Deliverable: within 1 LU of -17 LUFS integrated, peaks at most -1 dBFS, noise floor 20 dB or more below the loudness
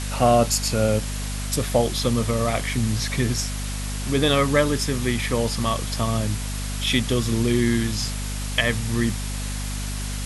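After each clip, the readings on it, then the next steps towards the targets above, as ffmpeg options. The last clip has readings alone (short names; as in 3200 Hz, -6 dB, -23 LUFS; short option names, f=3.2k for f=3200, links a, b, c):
hum 50 Hz; harmonics up to 250 Hz; hum level -26 dBFS; noise floor -28 dBFS; noise floor target -43 dBFS; loudness -23.0 LUFS; peak -4.5 dBFS; loudness target -17.0 LUFS
-> -af "bandreject=f=50:t=h:w=6,bandreject=f=100:t=h:w=6,bandreject=f=150:t=h:w=6,bandreject=f=200:t=h:w=6,bandreject=f=250:t=h:w=6"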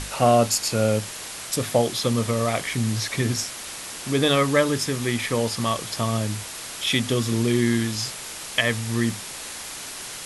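hum none; noise floor -36 dBFS; noise floor target -44 dBFS
-> -af "afftdn=nr=8:nf=-36"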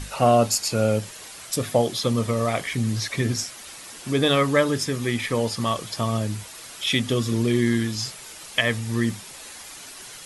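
noise floor -41 dBFS; noise floor target -44 dBFS
-> -af "afftdn=nr=6:nf=-41"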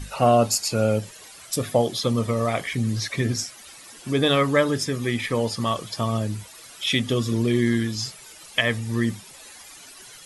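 noise floor -45 dBFS; loudness -23.5 LUFS; peak -5.0 dBFS; loudness target -17.0 LUFS
-> -af "volume=6.5dB,alimiter=limit=-1dB:level=0:latency=1"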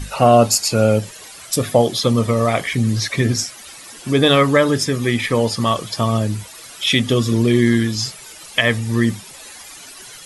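loudness -17.5 LUFS; peak -1.0 dBFS; noise floor -39 dBFS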